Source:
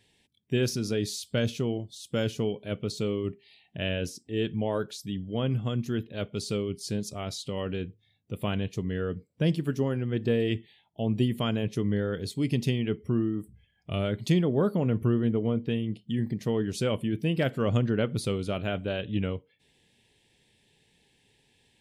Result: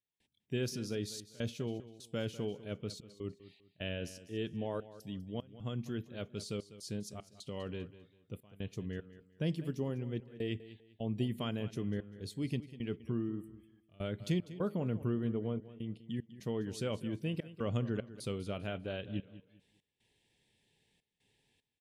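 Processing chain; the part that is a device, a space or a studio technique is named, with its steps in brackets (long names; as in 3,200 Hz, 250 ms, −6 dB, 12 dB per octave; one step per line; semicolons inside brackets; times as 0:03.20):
trance gate with a delay (gate pattern ".xxxxx.xx" 75 BPM −24 dB; repeating echo 198 ms, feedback 28%, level −15.5 dB)
0:09.64–0:10.23: parametric band 1,500 Hz −7.5 dB 0.45 octaves
level −9 dB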